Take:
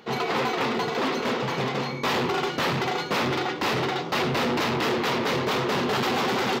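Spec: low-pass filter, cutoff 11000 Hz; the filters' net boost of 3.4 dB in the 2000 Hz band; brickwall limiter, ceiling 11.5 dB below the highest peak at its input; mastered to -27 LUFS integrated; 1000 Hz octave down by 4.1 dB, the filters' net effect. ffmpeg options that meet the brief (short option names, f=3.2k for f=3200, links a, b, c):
-af "lowpass=11k,equalizer=f=1k:t=o:g=-7,equalizer=f=2k:t=o:g=6,volume=5.5dB,alimiter=limit=-20.5dB:level=0:latency=1"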